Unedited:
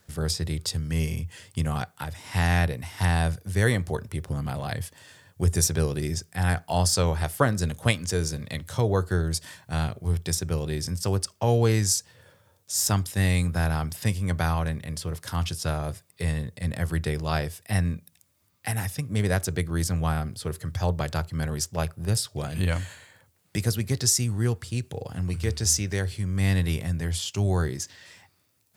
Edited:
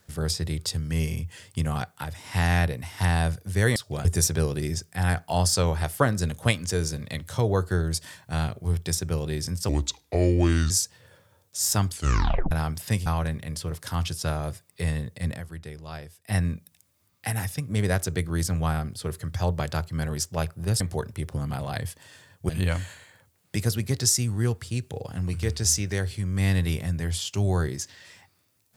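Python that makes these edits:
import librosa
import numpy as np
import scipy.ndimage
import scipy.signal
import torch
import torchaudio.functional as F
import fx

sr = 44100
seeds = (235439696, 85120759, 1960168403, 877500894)

y = fx.edit(x, sr, fx.swap(start_s=3.76, length_s=1.69, other_s=22.21, other_length_s=0.29),
    fx.speed_span(start_s=11.09, length_s=0.76, speed=0.75),
    fx.tape_stop(start_s=13.04, length_s=0.62),
    fx.cut(start_s=14.21, length_s=0.26),
    fx.fade_down_up(start_s=16.69, length_s=1.09, db=-12.0, fade_s=0.14, curve='qsin'), tone=tone)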